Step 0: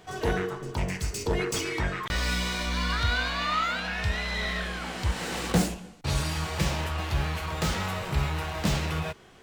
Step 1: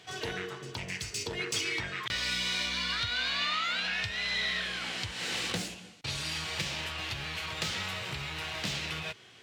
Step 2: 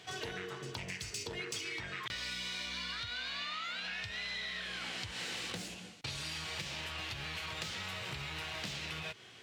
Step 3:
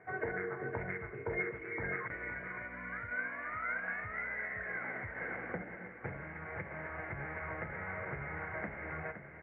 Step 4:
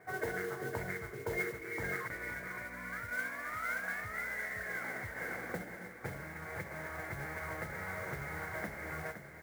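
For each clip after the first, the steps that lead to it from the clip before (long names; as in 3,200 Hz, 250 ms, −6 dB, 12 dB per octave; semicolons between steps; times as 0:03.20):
parametric band 110 Hz +12.5 dB 0.45 octaves; downward compressor 2 to 1, threshold −29 dBFS, peak gain reduction 8 dB; meter weighting curve D; level −6 dB
downward compressor 5 to 1, threshold −38 dBFS, peak gain reduction 10 dB
Chebyshev low-pass with heavy ripple 2,200 Hz, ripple 6 dB; single-tap delay 515 ms −5.5 dB; expander for the loud parts 1.5 to 1, over −54 dBFS; level +9 dB
noise that follows the level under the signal 16 dB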